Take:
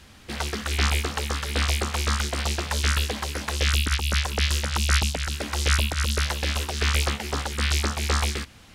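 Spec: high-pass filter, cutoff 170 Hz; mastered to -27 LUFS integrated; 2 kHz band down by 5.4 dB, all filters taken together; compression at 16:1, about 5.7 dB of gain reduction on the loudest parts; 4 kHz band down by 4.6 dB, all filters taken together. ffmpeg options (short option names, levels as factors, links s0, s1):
-af "highpass=170,equalizer=f=2000:t=o:g=-6,equalizer=f=4000:t=o:g=-4,acompressor=threshold=0.0282:ratio=16,volume=2.51"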